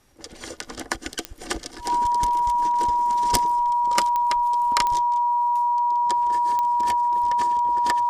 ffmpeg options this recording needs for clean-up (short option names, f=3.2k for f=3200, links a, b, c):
-af "adeclick=t=4,bandreject=f=960:w=30"